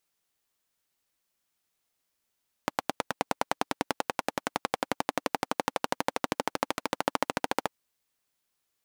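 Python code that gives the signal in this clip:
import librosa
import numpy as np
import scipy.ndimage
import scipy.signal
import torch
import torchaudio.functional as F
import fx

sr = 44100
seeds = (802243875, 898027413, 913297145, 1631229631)

y = fx.engine_single_rev(sr, seeds[0], length_s=5.0, rpm=1100, resonances_hz=(290.0, 520.0, 790.0), end_rpm=1700)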